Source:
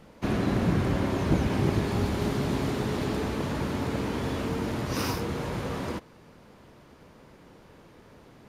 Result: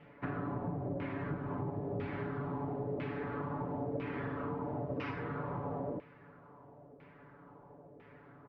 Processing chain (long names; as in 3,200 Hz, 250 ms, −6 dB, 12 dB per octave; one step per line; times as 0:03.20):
high-pass filter 62 Hz
comb filter 7 ms, depth 96%
downward compressor, threshold −28 dBFS, peak gain reduction 12 dB
auto-filter low-pass saw down 1 Hz 540–2,500 Hz
high-frequency loss of the air 160 metres
level −7.5 dB